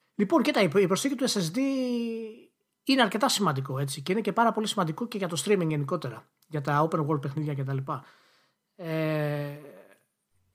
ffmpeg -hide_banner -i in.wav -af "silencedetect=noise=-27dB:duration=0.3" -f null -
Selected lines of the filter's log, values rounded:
silence_start: 2.15
silence_end: 2.89 | silence_duration: 0.74
silence_start: 6.08
silence_end: 6.54 | silence_duration: 0.46
silence_start: 7.96
silence_end: 8.86 | silence_duration: 0.90
silence_start: 9.48
silence_end: 10.54 | silence_duration: 1.06